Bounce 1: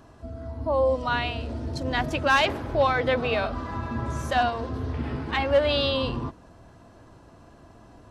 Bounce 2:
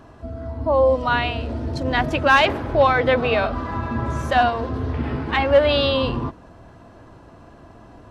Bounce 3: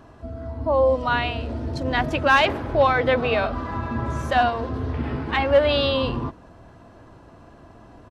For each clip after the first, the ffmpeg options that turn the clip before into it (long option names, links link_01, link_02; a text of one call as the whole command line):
ffmpeg -i in.wav -af "bass=frequency=250:gain=-1,treble=frequency=4000:gain=-7,volume=6dB" out.wav
ffmpeg -i in.wav -af "aresample=32000,aresample=44100,volume=-2dB" out.wav